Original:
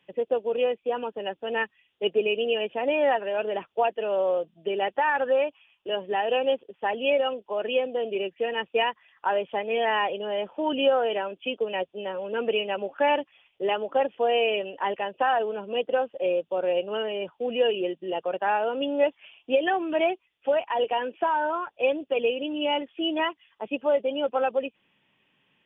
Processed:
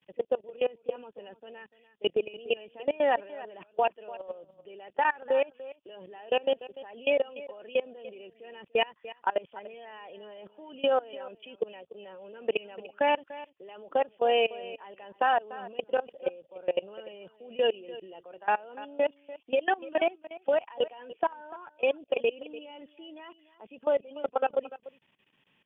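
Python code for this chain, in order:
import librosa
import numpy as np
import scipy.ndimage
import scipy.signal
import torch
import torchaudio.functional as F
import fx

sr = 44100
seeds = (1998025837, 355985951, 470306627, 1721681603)

p1 = fx.level_steps(x, sr, step_db=23)
y = p1 + fx.echo_single(p1, sr, ms=293, db=-17.0, dry=0)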